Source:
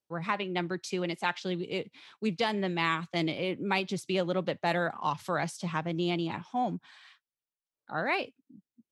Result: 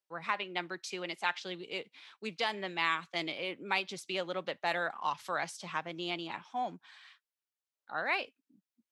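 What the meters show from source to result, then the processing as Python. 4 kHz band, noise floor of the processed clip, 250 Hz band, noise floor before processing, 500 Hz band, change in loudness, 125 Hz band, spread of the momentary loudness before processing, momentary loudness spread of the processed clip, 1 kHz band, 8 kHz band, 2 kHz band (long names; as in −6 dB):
−1.0 dB, below −85 dBFS, −11.5 dB, below −85 dBFS, −7.0 dB, −4.0 dB, −15.0 dB, 5 LU, 9 LU, −3.0 dB, −2.5 dB, −1.0 dB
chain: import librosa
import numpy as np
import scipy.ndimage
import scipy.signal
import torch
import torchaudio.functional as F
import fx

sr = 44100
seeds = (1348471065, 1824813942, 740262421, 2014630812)

y = fx.highpass(x, sr, hz=1100.0, slope=6)
y = fx.high_shelf(y, sr, hz=4900.0, db=-5.0)
y = F.gain(torch.from_numpy(y), 1.0).numpy()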